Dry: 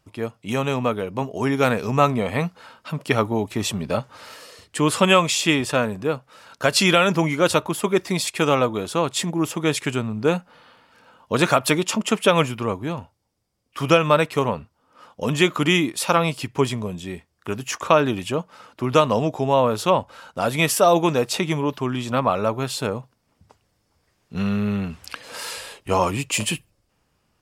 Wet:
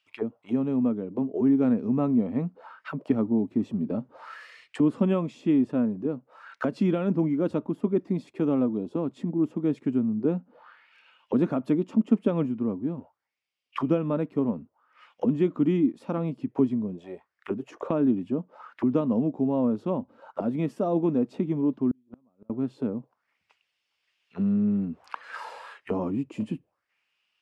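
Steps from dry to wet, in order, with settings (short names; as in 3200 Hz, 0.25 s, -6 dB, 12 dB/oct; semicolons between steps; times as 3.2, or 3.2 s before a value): auto-wah 250–2900 Hz, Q 3.6, down, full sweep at -23 dBFS; 8.76–8.96 spectral gain 1100–2400 Hz -8 dB; 21.91–22.5 flipped gate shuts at -26 dBFS, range -39 dB; gain +5 dB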